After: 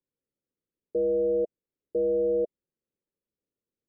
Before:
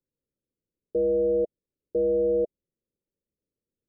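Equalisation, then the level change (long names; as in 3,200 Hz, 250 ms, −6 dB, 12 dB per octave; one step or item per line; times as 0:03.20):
high-frequency loss of the air 360 metres
low-shelf EQ 150 Hz −8 dB
0.0 dB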